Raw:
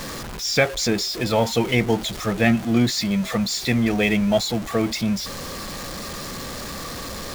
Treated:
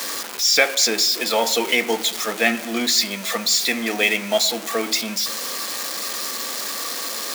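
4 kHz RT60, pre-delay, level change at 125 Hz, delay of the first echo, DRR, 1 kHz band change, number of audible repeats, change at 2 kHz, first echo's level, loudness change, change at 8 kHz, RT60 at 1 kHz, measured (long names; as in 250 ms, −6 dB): 0.65 s, 4 ms, below −15 dB, no echo audible, 11.0 dB, +2.0 dB, no echo audible, +4.5 dB, no echo audible, +2.5 dB, +8.5 dB, 0.85 s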